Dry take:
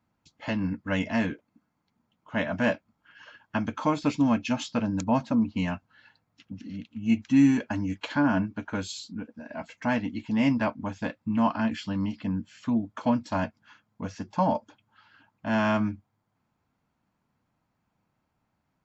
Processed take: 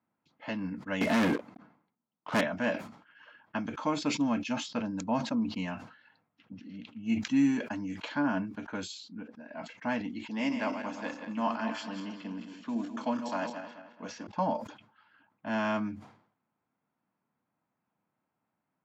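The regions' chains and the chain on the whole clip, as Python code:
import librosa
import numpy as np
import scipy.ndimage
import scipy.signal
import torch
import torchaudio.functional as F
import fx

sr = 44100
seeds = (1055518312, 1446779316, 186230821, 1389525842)

y = fx.chain(x, sr, fx.lowpass(hz=1900.0, slope=6),
    fx.leveller(passes=5), at=(1.01, 2.41))
y = fx.chain(y, sr, fx.reverse_delay_fb(ms=107, feedback_pct=61, wet_db=-7.5),
    fx.highpass(hz=230.0, slope=12),
    fx.high_shelf(hz=5100.0, db=6.0), at=(10.29, 14.27))
y = fx.env_lowpass(y, sr, base_hz=2500.0, full_db=-25.0)
y = scipy.signal.sosfilt(scipy.signal.butter(2, 180.0, 'highpass', fs=sr, output='sos'), y)
y = fx.sustainer(y, sr, db_per_s=100.0)
y = y * 10.0 ** (-5.0 / 20.0)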